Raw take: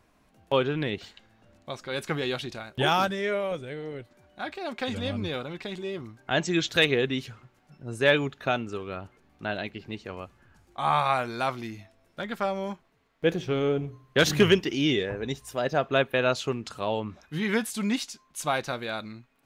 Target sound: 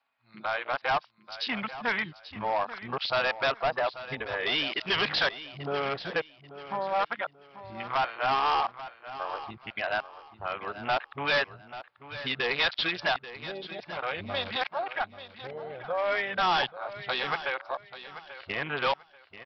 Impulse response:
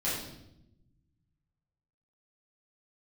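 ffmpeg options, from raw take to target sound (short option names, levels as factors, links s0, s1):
-filter_complex "[0:a]areverse,highpass=f=52:w=0.5412,highpass=f=52:w=1.3066,lowshelf=f=530:t=q:w=1.5:g=-12.5,asplit=2[s0][s1];[s1]acompressor=threshold=0.00891:ratio=4,volume=1.26[s2];[s0][s2]amix=inputs=2:normalize=0,adynamicequalizer=threshold=0.00355:dfrequency=140:dqfactor=0.92:tfrequency=140:tqfactor=0.92:attack=5:release=100:ratio=0.375:range=3:mode=cutabove:tftype=bell,afwtdn=0.02,aresample=11025,asoftclip=type=hard:threshold=0.0668,aresample=44100,aecho=1:1:837|1674|2511:0.2|0.0539|0.0145,volume=1.19"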